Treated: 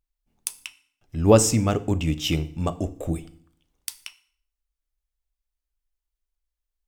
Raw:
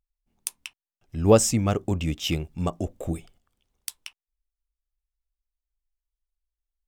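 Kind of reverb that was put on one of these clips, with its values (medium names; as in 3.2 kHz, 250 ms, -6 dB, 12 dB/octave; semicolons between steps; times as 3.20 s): FDN reverb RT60 0.56 s, low-frequency decay 1.3×, high-frequency decay 0.9×, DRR 11.5 dB; trim +1.5 dB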